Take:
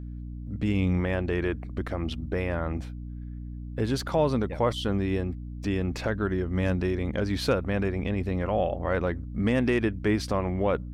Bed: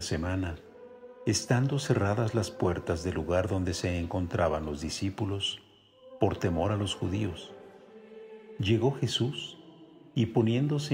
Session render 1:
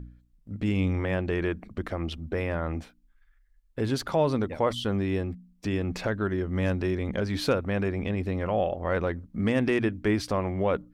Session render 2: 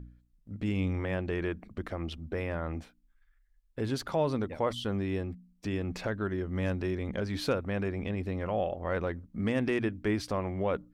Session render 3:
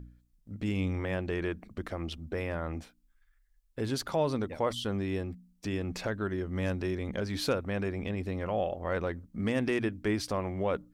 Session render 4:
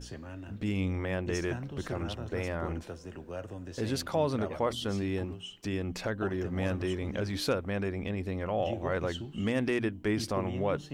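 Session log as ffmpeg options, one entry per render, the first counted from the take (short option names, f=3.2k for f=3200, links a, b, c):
-af "bandreject=f=60:t=h:w=4,bandreject=f=120:t=h:w=4,bandreject=f=180:t=h:w=4,bandreject=f=240:t=h:w=4,bandreject=f=300:t=h:w=4"
-af "volume=-4.5dB"
-af "bass=f=250:g=-1,treble=f=4k:g=5"
-filter_complex "[1:a]volume=-12.5dB[a];[0:a][a]amix=inputs=2:normalize=0"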